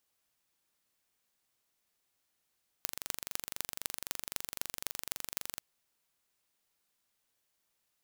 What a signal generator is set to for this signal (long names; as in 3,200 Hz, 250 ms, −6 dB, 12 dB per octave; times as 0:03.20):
impulse train 23.8 per second, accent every 6, −5 dBFS 2.74 s